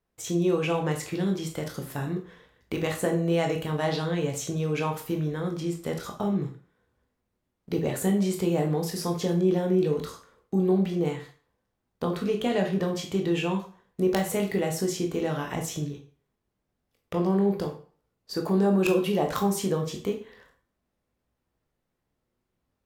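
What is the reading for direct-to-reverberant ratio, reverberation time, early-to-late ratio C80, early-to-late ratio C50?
2.5 dB, 0.45 s, 14.0 dB, 9.0 dB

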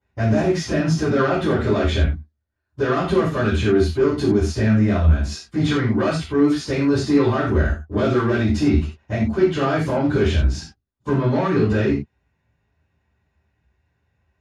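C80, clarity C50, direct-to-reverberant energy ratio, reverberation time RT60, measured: 9.5 dB, 4.0 dB, −16.0 dB, non-exponential decay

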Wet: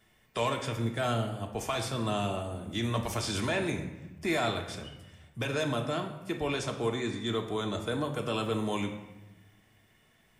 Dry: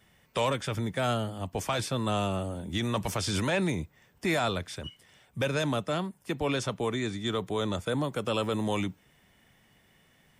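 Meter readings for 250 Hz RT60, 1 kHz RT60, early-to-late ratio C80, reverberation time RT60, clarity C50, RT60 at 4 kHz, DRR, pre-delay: 1.3 s, 1.0 s, 10.5 dB, 1.0 s, 8.0 dB, 0.75 s, 2.5 dB, 3 ms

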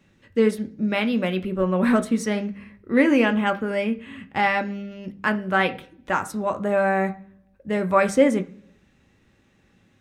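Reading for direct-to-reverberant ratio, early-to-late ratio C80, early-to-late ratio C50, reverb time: 6.0 dB, 22.0 dB, 17.5 dB, 0.55 s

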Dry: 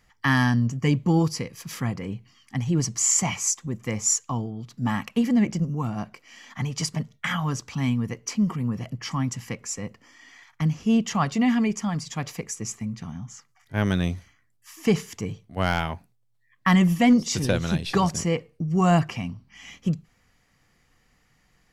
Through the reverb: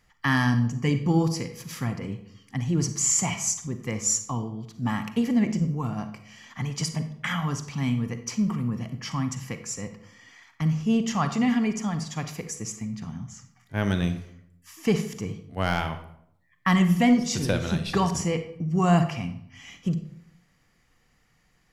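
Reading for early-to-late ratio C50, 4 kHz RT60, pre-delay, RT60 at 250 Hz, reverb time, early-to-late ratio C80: 10.5 dB, 0.45 s, 37 ms, 0.80 s, 0.70 s, 13.5 dB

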